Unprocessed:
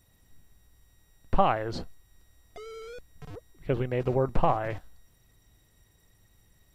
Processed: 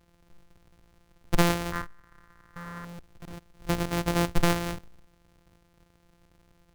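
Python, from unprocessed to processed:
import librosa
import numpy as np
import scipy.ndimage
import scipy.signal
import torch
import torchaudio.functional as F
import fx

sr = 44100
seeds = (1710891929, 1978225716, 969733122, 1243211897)

y = np.r_[np.sort(x[:len(x) // 256 * 256].reshape(-1, 256), axis=1).ravel(), x[len(x) // 256 * 256:]]
y = fx.band_shelf(y, sr, hz=1400.0, db=13.5, octaves=1.2, at=(1.72, 2.85))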